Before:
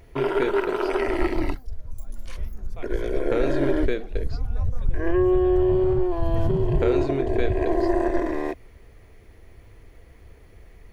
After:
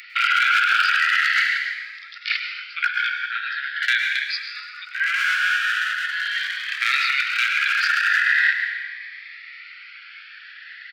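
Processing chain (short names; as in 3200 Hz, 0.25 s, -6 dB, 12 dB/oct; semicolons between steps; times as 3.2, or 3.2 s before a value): 1.41–3.82 negative-ratio compressor -30 dBFS, ratio -1; downsampling 11025 Hz; overloaded stage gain 17 dB; steep high-pass 1400 Hz 96 dB/oct; high shelf 3300 Hz -9.5 dB; speakerphone echo 0.13 s, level -14 dB; reverb RT60 1.6 s, pre-delay 98 ms, DRR 5 dB; maximiser +33.5 dB; cascading phaser rising 0.42 Hz; gain -5.5 dB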